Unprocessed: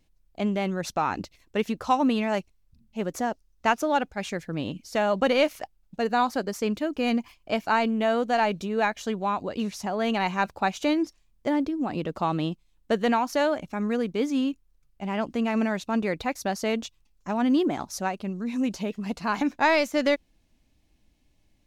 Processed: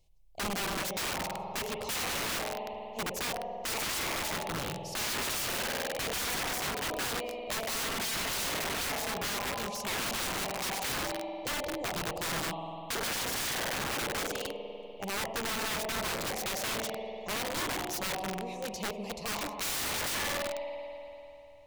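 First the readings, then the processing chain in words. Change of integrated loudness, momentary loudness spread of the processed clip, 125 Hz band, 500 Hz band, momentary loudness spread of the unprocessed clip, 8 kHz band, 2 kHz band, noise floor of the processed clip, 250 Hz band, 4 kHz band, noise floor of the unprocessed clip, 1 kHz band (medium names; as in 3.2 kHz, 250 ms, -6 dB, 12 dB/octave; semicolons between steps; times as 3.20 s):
-6.0 dB, 6 LU, -6.5 dB, -10.0 dB, 9 LU, +8.5 dB, -3.0 dB, -46 dBFS, -15.5 dB, +3.0 dB, -66 dBFS, -9.0 dB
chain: static phaser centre 630 Hz, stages 4; spring tank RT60 3.2 s, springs 49 ms, chirp 75 ms, DRR 4.5 dB; integer overflow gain 28.5 dB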